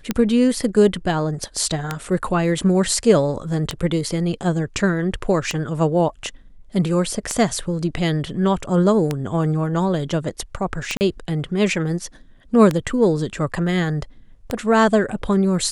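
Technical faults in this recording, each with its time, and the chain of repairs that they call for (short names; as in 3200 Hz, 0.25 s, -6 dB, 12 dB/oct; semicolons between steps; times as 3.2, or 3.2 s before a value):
tick 33 1/3 rpm -6 dBFS
10.97–11.01 gap 39 ms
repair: de-click; interpolate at 10.97, 39 ms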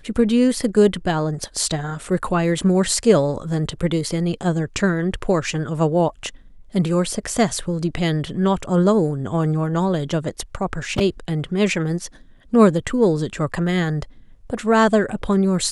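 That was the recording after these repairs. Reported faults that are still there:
none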